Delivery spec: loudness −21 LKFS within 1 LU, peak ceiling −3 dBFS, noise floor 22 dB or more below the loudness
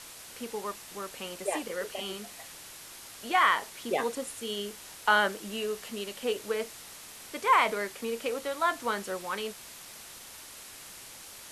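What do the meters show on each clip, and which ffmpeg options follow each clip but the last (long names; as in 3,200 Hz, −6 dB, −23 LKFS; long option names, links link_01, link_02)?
background noise floor −47 dBFS; target noise floor −53 dBFS; integrated loudness −30.5 LKFS; sample peak −9.5 dBFS; target loudness −21.0 LKFS
→ -af "afftdn=noise_reduction=6:noise_floor=-47"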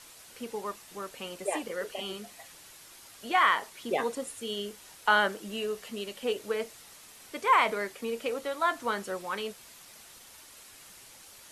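background noise floor −52 dBFS; target noise floor −53 dBFS
→ -af "afftdn=noise_reduction=6:noise_floor=-52"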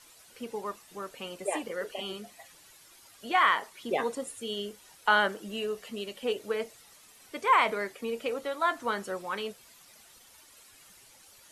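background noise floor −57 dBFS; integrated loudness −30.5 LKFS; sample peak −9.5 dBFS; target loudness −21.0 LKFS
→ -af "volume=9.5dB,alimiter=limit=-3dB:level=0:latency=1"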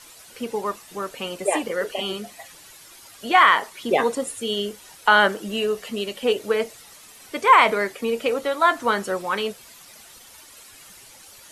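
integrated loudness −21.5 LKFS; sample peak −3.0 dBFS; background noise floor −47 dBFS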